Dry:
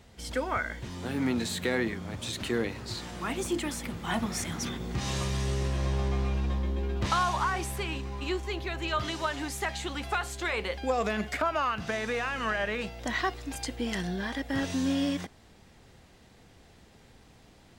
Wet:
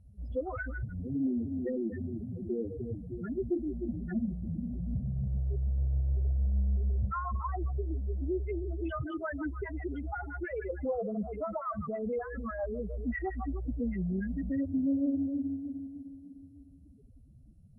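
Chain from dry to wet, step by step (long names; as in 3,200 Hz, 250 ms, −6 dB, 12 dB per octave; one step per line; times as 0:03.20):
running median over 5 samples
0:10.67–0:12.86: high-shelf EQ 2,100 Hz −10.5 dB
echo with a time of its own for lows and highs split 470 Hz, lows 303 ms, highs 155 ms, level −8 dB
rotating-speaker cabinet horn 7.5 Hz
downward compressor 3 to 1, threshold −30 dBFS, peak gain reduction 6 dB
delay with a high-pass on its return 94 ms, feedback 48%, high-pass 2,300 Hz, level −9.5 dB
asymmetric clip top −31.5 dBFS
spectral peaks only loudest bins 4
high-frequency loss of the air 380 metres
level +5.5 dB
MP2 64 kbit/s 44,100 Hz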